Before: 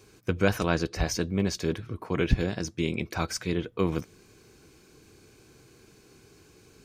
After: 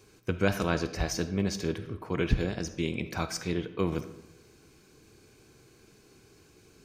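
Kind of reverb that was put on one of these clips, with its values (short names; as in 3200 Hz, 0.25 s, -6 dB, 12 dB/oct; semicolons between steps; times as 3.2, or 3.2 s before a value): digital reverb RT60 0.96 s, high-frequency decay 0.65×, pre-delay 5 ms, DRR 10.5 dB; gain -2.5 dB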